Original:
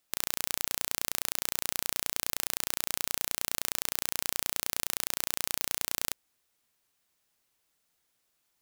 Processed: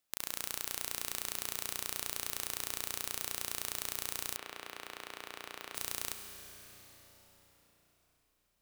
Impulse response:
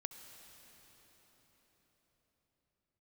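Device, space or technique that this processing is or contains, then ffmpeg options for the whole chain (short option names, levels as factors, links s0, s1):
cathedral: -filter_complex "[1:a]atrim=start_sample=2205[s0];[0:a][s0]afir=irnorm=-1:irlink=0,asettb=1/sr,asplit=3[s1][s2][s3];[s1]atrim=end=4.364[s4];[s2]atrim=start=4.36:end=5.75,asetpts=PTS-STARTPTS,afade=t=in:d=0.004:c=qsin,afade=t=out:st=1.386:d=0.004:c=qsin,acrossover=split=240 3500:gain=0.224 1 0.141[s5][s6][s7];[s5][s6][s7]amix=inputs=3:normalize=0[s8];[s3]atrim=start=5.746[s9];[s4][s8]acrossfade=d=0.004:c1=hsin:c2=qsin[s10];[s10][s9]acrossfade=d=0.004:c1=qsin:c2=hsin,volume=0.75"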